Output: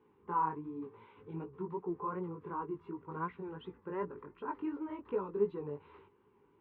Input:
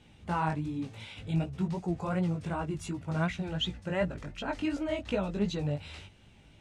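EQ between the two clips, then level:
pair of resonant band-passes 650 Hz, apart 1.3 octaves
high-frequency loss of the air 440 metres
+7.0 dB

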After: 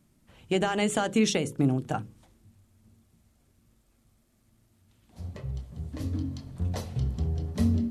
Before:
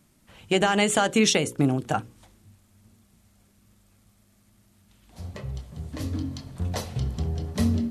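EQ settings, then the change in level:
low-shelf EQ 440 Hz +7.5 dB
mains-hum notches 50/100/150/200 Hz
−7.5 dB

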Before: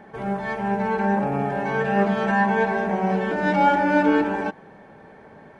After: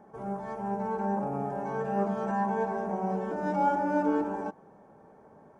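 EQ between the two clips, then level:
low-shelf EQ 140 Hz −4 dB
flat-topped bell 2,700 Hz −13.5 dB
−7.5 dB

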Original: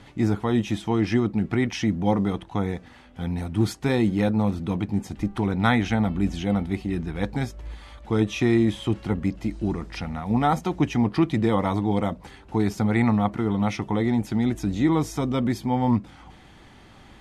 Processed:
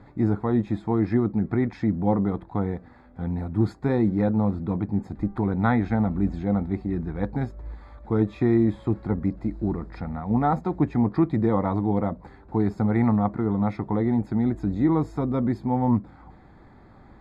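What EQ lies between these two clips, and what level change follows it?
moving average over 15 samples
0.0 dB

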